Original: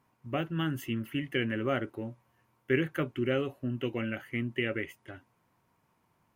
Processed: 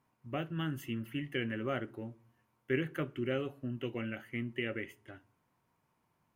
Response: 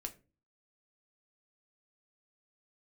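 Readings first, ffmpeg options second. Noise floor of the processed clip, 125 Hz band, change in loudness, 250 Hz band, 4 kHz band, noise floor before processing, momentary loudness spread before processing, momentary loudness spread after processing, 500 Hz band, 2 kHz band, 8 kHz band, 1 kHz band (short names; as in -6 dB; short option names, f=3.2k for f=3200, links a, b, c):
-78 dBFS, -4.5 dB, -5.0 dB, -5.0 dB, -5.0 dB, -73 dBFS, 11 LU, 11 LU, -5.0 dB, -5.0 dB, n/a, -5.0 dB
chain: -filter_complex "[0:a]asplit=2[a][b];[1:a]atrim=start_sample=2205,asetrate=27783,aresample=44100[c];[b][c]afir=irnorm=-1:irlink=0,volume=-8.5dB[d];[a][d]amix=inputs=2:normalize=0,volume=-7.5dB"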